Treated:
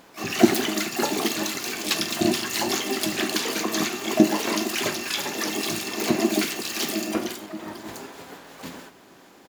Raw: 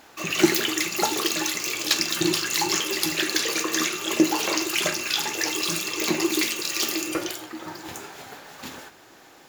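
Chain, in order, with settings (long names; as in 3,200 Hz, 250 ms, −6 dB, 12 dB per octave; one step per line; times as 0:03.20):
hollow resonant body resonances 270/390/1,000 Hz, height 7 dB, ringing for 30 ms
pitch-shifted copies added −7 semitones −4 dB, +12 semitones −8 dB
level −4.5 dB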